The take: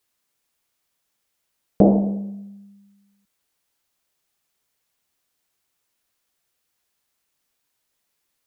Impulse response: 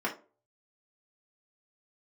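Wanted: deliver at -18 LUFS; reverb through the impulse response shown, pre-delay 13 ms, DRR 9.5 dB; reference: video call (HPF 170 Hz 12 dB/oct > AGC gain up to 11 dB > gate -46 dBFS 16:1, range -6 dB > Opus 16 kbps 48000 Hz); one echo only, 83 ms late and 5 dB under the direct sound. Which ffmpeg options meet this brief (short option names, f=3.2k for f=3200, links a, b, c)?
-filter_complex "[0:a]aecho=1:1:83:0.562,asplit=2[a][b];[1:a]atrim=start_sample=2205,adelay=13[c];[b][c]afir=irnorm=-1:irlink=0,volume=-17.5dB[d];[a][d]amix=inputs=2:normalize=0,highpass=170,dynaudnorm=m=11dB,agate=range=-6dB:threshold=-46dB:ratio=16,volume=1dB" -ar 48000 -c:a libopus -b:a 16k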